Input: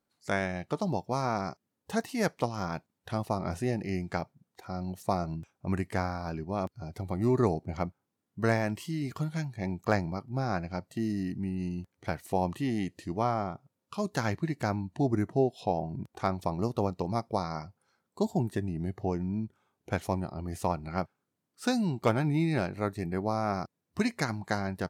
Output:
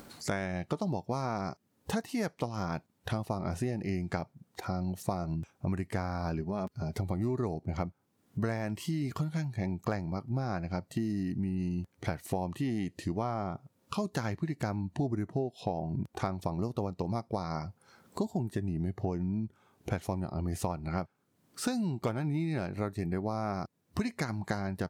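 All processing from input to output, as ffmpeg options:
-filter_complex "[0:a]asettb=1/sr,asplit=3[s0][s1][s2];[s0]atrim=end=6.414[s3];[s1]atrim=start=6.41:end=6.99,asetpts=PTS-STARTPTS,afade=t=in:d=0.004:c=qsin,afade=t=out:st=0.576:d=0.004:c=qsin,aecho=1:1:4.8:0.44,atrim=end_sample=25578,acompressor=threshold=0.0112:ratio=2:attack=3.2:release=140:knee=1:detection=peak[s4];[s2]atrim=start=6.986[s5];[s3][s4]acrossfade=d=0.004:c1=hsin:c2=qsin[s6];[s6][s5]acrossfade=d=0.004:c1=qsin:c2=hsin,acompressor=mode=upward:threshold=0.01:ratio=2.5,lowshelf=f=330:g=3.5,acompressor=threshold=0.0178:ratio=6,volume=1.88"

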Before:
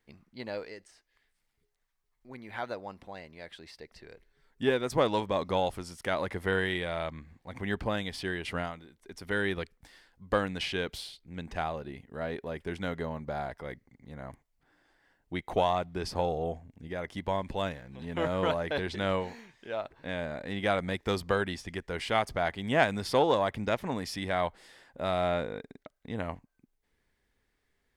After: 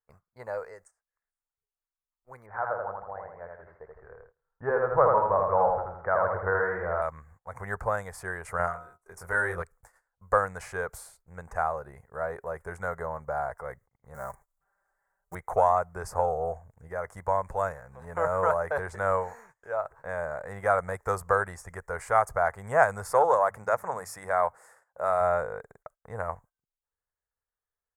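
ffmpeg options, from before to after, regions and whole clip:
-filter_complex "[0:a]asettb=1/sr,asplit=3[s0][s1][s2];[s0]atrim=end=2.464[s3];[s1]atrim=start=2.46:end=7.02,asetpts=PTS-STARTPTS,afade=t=in:d=0.004:c=qsin,afade=t=out:st=4.556:d=0.004:c=qsin,lowpass=f=1700:w=0.5412,lowpass=f=1700:w=1.3066,aecho=1:1:81|162|243|324|405|486:0.708|0.326|0.15|0.0689|0.0317|0.0146,atrim=end_sample=201096[s4];[s2]atrim=start=7.016[s5];[s3][s4]acrossfade=d=0.004:c1=hsin:c2=qsin[s6];[s6][s5]acrossfade=d=0.004:c1=qsin:c2=hsin,asettb=1/sr,asplit=3[s7][s8][s9];[s7]atrim=end=8.574[s10];[s8]atrim=start=8.57:end=9.62,asetpts=PTS-STARTPTS,afade=t=in:d=0.004:c=qsin,afade=t=out:st=1.046:d=0.004:c=qsin,asplit=2[s11][s12];[s12]adelay=23,volume=0.708[s13];[s11][s13]amix=inputs=2:normalize=0,atrim=end_sample=46305,bandreject=f=63.63:t=h:w=4,bandreject=f=127.26:t=h:w=4,bandreject=f=190.89:t=h:w=4,bandreject=f=254.52:t=h:w=4,bandreject=f=318.15:t=h:w=4,bandreject=f=381.78:t=h:w=4,bandreject=f=445.41:t=h:w=4,bandreject=f=509.04:t=h:w=4,bandreject=f=572.67:t=h:w=4,bandreject=f=636.3:t=h:w=4,bandreject=f=699.93:t=h:w=4,bandreject=f=763.56:t=h:w=4,bandreject=f=827.19:t=h:w=4,bandreject=f=890.82:t=h:w=4,bandreject=f=954.45:t=h:w=4,bandreject=f=1018.08:t=h:w=4,bandreject=f=1081.71:t=h:w=4,bandreject=f=1145.34:t=h:w=4,bandreject=f=1208.97:t=h:w=4,bandreject=f=1272.6:t=h:w=4,bandreject=f=1336.23:t=h:w=4,bandreject=f=1399.86:t=h:w=4,bandreject=f=1463.49:t=h:w=4[s14];[s9]atrim=start=9.616[s15];[s10][s14]acrossfade=d=0.004:c1=hsin:c2=qsin[s16];[s16][s15]acrossfade=d=0.004:c1=qsin:c2=hsin,asettb=1/sr,asplit=3[s17][s18][s19];[s17]atrim=end=14.144[s20];[s18]atrim=start=14.14:end=15.35,asetpts=PTS-STARTPTS,afade=t=in:d=0.004:c=qsin,afade=t=out:st=1.206:d=0.004:c=qsin,aecho=1:1:5.1:0.88,atrim=end_sample=53361,acompressor=mode=upward:threshold=0.00282:ratio=2.5:attack=3.2:release=140:knee=2.83:detection=peak,acrusher=bits=4:mode=log:mix=0:aa=0.000001[s21];[s19]atrim=start=15.346[s22];[s20][s21]acrossfade=d=0.004:c1=hsin:c2=qsin[s23];[s23][s22]acrossfade=d=0.004:c1=qsin:c2=hsin,asettb=1/sr,asplit=3[s24][s25][s26];[s24]atrim=end=23.134[s27];[s25]atrim=start=23.13:end=25.21,asetpts=PTS-STARTPTS,afade=t=in:d=0.004:c=qsin,afade=t=out:st=2.076:d=0.004:c=qsin,highpass=f=180:p=1,bandreject=f=50:t=h:w=6,bandreject=f=100:t=h:w=6,bandreject=f=150:t=h:w=6,bandreject=f=200:t=h:w=6,bandreject=f=250:t=h:w=6[s28];[s26]atrim=start=25.206[s29];[s27][s28]acrossfade=d=0.004:c1=hsin:c2=qsin[s30];[s30][s29]acrossfade=d=0.004:c1=qsin:c2=hsin,agate=range=0.1:threshold=0.002:ratio=16:detection=peak,firequalizer=gain_entry='entry(110,0);entry(270,-19);entry(470,3);entry(1300,9);entry(3100,-27);entry(7000,5)':delay=0.05:min_phase=1"

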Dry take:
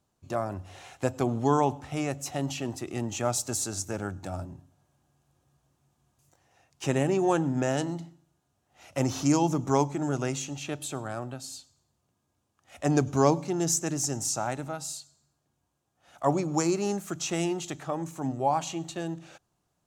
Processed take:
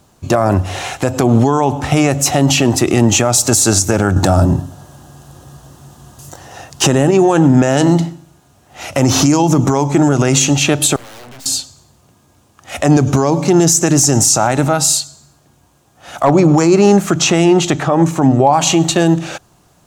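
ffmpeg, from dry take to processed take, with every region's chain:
-filter_complex "[0:a]asettb=1/sr,asplit=3[s0][s1][s2];[s0]atrim=end=4.164[s3];[s1]atrim=start=4.16:end=7.11,asetpts=PTS-STARTPTS,afade=t=in:d=0.004:c=qsin,afade=t=out:st=2.946:d=0.004:c=qsin,equalizer=f=2300:t=o:w=0.25:g=-10.5,acontrast=70[s4];[s2]atrim=start=7.106[s5];[s3][s4]acrossfade=d=0.004:c1=hsin:c2=qsin[s6];[s6][s5]acrossfade=d=0.004:c1=qsin:c2=hsin,asettb=1/sr,asplit=3[s7][s8][s9];[s7]atrim=end=10.964[s10];[s8]atrim=start=10.96:end=11.46,asetpts=PTS-STARTPTS,afade=t=in:d=0.004:c=qsin,afade=t=out:st=0.496:d=0.004:c=qsin,equalizer=f=93:t=o:w=0.84:g=-12,aeval=exprs='(mod(50.1*val(0)+1,2)-1)/50.1':c=same,aeval=exprs='(tanh(1000*val(0)+0.65)-tanh(0.65))/1000':c=same[s11];[s9]atrim=start=11.456[s12];[s10][s11]acrossfade=d=0.004:c1=hsin:c2=qsin[s13];[s13][s12]acrossfade=d=0.004:c1=qsin:c2=hsin,asettb=1/sr,asplit=3[s14][s15][s16];[s14]atrim=end=16.244[s17];[s15]atrim=start=16.24:end=18.53,asetpts=PTS-STARTPTS,afade=t=in:d=0.004:c=qsin,afade=t=out:st=2.286:d=0.004:c=qsin,lowpass=f=3300:p=1,asoftclip=type=hard:threshold=0.168[s18];[s16]atrim=start=18.526[s19];[s17][s18]acrossfade=d=0.004:c1=hsin:c2=qsin[s20];[s20][s19]acrossfade=d=0.004:c1=qsin:c2=hsin,acompressor=threshold=0.0447:ratio=6,alimiter=level_in=18.8:limit=0.891:release=50:level=0:latency=1,volume=0.891"

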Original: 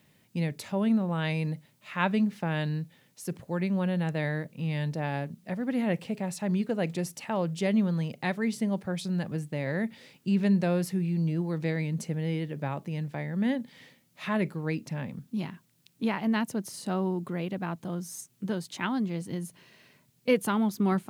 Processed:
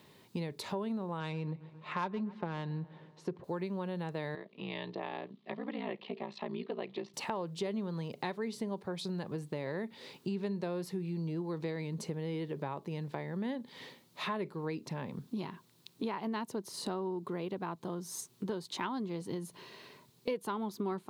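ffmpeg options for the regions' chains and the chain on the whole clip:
-filter_complex "[0:a]asettb=1/sr,asplit=3[s0][s1][s2];[s0]atrim=end=1.204[s3];[s1]atrim=start=1.2:end=3.44,asetpts=PTS-STARTPTS,afade=t=in:d=0.004:c=qsin,afade=t=out:st=2.236:d=0.004:c=qsin,asplit=2[s4][s5];[s5]adelay=134,lowpass=f=5000:p=1,volume=0.0708,asplit=2[s6][s7];[s7]adelay=134,lowpass=f=5000:p=1,volume=0.55,asplit=2[s8][s9];[s9]adelay=134,lowpass=f=5000:p=1,volume=0.55,asplit=2[s10][s11];[s11]adelay=134,lowpass=f=5000:p=1,volume=0.55[s12];[s4][s6][s8][s10][s12]amix=inputs=5:normalize=0,atrim=end_sample=98784,adynamicsmooth=sensitivity=2.5:basefreq=2400,aecho=1:1:5.6:0.33,atrim=end_sample=98784[s13];[s2]atrim=start=3.436[s14];[s3][s13]acrossfade=d=0.004:c1=hsin:c2=qsin[s15];[s15][s14]acrossfade=d=0.004:c1=qsin:c2=hsin,asettb=1/sr,asplit=3[s16][s17][s18];[s16]atrim=end=4.354[s19];[s17]atrim=start=4.35:end=7.14,asetpts=PTS-STARTPTS,afade=t=in:d=0.004:c=qsin,afade=t=out:st=2.786:d=0.004:c=qsin,bandreject=f=1500:w=9.1,aeval=exprs='val(0)*sin(2*PI*29*n/s)':c=same,highpass=f=220:w=0.5412,highpass=f=220:w=1.3066,equalizer=f=280:t=q:w=4:g=-9,equalizer=f=500:t=q:w=4:g=-9,equalizer=f=880:t=q:w=4:g=-5,equalizer=f=1500:t=q:w=4:g=-4,equalizer=f=3300:t=q:w=4:g=3,lowpass=f=3700:w=0.5412,lowpass=f=3700:w=1.3066[s20];[s18]atrim=start=7.136[s21];[s19][s20]acrossfade=d=0.004:c1=hsin:c2=qsin[s22];[s22][s21]acrossfade=d=0.004:c1=qsin:c2=hsin,acontrast=81,equalizer=f=400:t=o:w=0.67:g=11,equalizer=f=1000:t=o:w=0.67:g=11,equalizer=f=4000:t=o:w=0.67:g=8,acompressor=threshold=0.0355:ratio=4,volume=0.447"

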